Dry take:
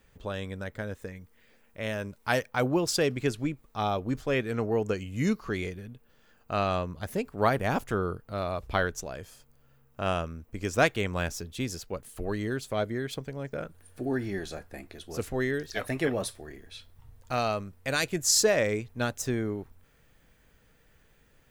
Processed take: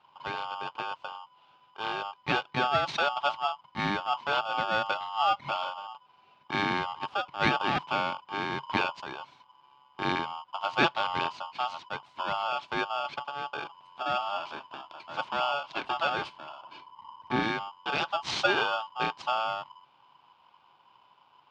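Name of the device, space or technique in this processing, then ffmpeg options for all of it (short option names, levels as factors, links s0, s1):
ring modulator pedal into a guitar cabinet: -filter_complex "[0:a]aeval=exprs='val(0)*sgn(sin(2*PI*1000*n/s))':c=same,highpass=90,equalizer=f=140:t=q:w=4:g=7,equalizer=f=480:t=q:w=4:g=-8,equalizer=f=870:t=q:w=4:g=5,equalizer=f=1800:t=q:w=4:g=-6,lowpass=f=3800:w=0.5412,lowpass=f=3800:w=1.3066,asettb=1/sr,asplit=3[s0][s1][s2];[s0]atrim=end=16.624[s3];[s1]atrim=start=16.62:end=17.43,asetpts=PTS-STARTPTS,afade=t=in:d=0.004:c=qsin,afade=t=out:st=0.806:d=0.004:c=qsin,tiltshelf=f=1500:g=4.5[s4];[s2]atrim=start=17.426[s5];[s3][s4]acrossfade=d=0.004:c1=hsin:c2=qsin[s6];[s6][s5]acrossfade=d=0.004:c1=qsin:c2=hsin"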